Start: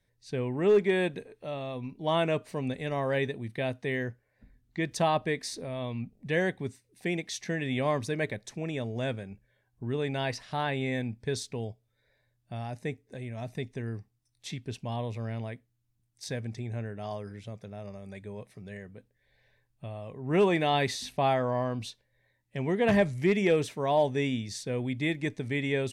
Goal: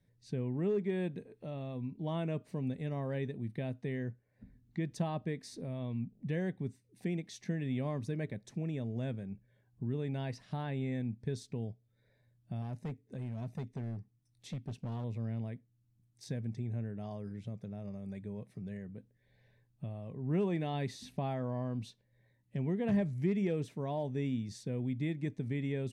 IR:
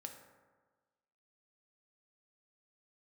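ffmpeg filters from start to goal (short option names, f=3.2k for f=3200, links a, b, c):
-filter_complex "[0:a]acompressor=threshold=-52dB:ratio=1.5,equalizer=f=170:t=o:w=2.4:g=14,asettb=1/sr,asplit=3[a][b][c];[a]atrim=end=12.624[d];[b]atrim=start=12.62:end=15.04,asetpts=PTS-STARTPTS,afade=t=in:d=0.004:c=qsin,afade=t=out:st=2.416:d=0.004:c=qsin,volume=29dB,asoftclip=hard,volume=-29dB[e];[c]atrim=start=15.036[f];[d][e]acrossfade=d=0.004:c1=hsin:c2=qsin[g];[g][f]acrossfade=d=0.004:c1=qsin:c2=hsin,volume=-6dB"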